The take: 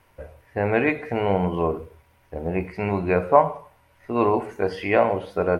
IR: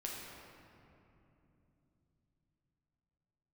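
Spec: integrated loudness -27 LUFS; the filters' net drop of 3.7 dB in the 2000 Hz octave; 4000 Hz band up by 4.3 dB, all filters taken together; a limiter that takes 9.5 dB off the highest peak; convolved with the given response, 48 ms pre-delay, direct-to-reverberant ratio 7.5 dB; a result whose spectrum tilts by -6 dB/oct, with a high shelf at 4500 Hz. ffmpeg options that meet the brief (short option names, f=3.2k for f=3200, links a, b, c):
-filter_complex "[0:a]equalizer=f=2k:t=o:g=-8,equalizer=f=4k:t=o:g=8.5,highshelf=f=4.5k:g=3.5,alimiter=limit=-12.5dB:level=0:latency=1,asplit=2[a][b];[1:a]atrim=start_sample=2205,adelay=48[c];[b][c]afir=irnorm=-1:irlink=0,volume=-7.5dB[d];[a][d]amix=inputs=2:normalize=0,volume=-1.5dB"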